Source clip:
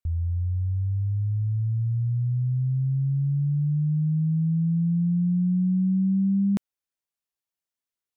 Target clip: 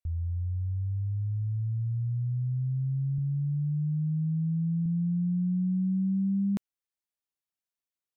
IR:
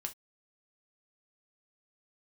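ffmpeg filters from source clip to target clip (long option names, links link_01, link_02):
-filter_complex "[0:a]asettb=1/sr,asplit=3[link_01][link_02][link_03];[link_01]atrim=end=3.184[link_04];[link_02]atrim=start=3.18:end=4.86,asetpts=PTS-STARTPTS,afade=type=in:duration=0.004:curve=qsin,afade=type=out:start_time=1.676:duration=0.004:curve=qsin,highpass=68[link_05];[link_03]atrim=start=4.856[link_06];[link_04][link_05]acrossfade=duration=0.004:curve1=hsin:curve2=qsin[link_07];[link_07][link_06]acrossfade=duration=0.004:curve1=qsin:curve2=hsin,volume=-5dB"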